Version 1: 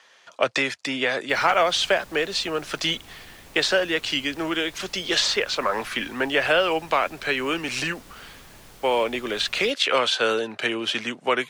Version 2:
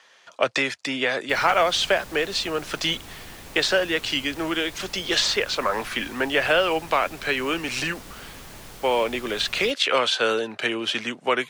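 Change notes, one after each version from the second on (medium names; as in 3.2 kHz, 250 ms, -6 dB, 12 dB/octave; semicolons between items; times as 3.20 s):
background +5.5 dB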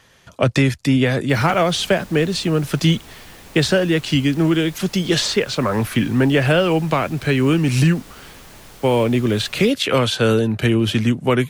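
speech: remove band-pass 600–6600 Hz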